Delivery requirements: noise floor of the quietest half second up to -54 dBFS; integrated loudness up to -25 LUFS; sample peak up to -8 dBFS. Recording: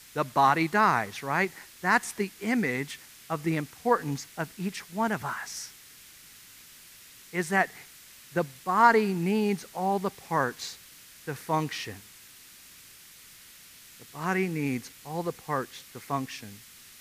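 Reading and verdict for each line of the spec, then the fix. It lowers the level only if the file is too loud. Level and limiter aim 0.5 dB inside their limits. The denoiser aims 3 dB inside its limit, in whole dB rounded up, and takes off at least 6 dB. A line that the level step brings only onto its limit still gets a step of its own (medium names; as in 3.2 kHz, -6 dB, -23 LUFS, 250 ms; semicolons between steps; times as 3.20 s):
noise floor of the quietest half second -51 dBFS: fail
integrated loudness -28.5 LUFS: pass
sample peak -7.0 dBFS: fail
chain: noise reduction 6 dB, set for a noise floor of -51 dBFS; peak limiter -8.5 dBFS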